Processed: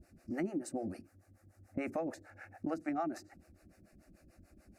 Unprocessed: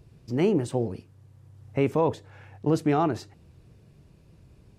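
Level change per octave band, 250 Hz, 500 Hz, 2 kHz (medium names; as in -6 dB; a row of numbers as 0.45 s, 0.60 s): -11.0 dB, -15.0 dB, -8.0 dB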